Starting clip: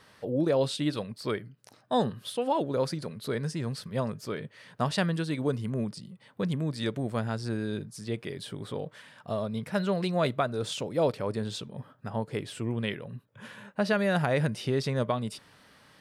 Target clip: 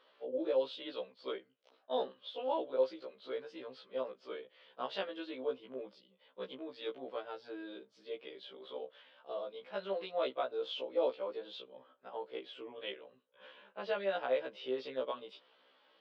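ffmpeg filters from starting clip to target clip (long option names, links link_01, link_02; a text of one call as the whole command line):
ffmpeg -i in.wav -af "highpass=frequency=330:width=0.5412,highpass=frequency=330:width=1.3066,equalizer=frequency=520:width_type=q:width=4:gain=6,equalizer=frequency=1800:width_type=q:width=4:gain=-6,equalizer=frequency=3200:width_type=q:width=4:gain=7,lowpass=frequency=3800:width=0.5412,lowpass=frequency=3800:width=1.3066,afftfilt=real='re*1.73*eq(mod(b,3),0)':imag='im*1.73*eq(mod(b,3),0)':win_size=2048:overlap=0.75,volume=-7dB" out.wav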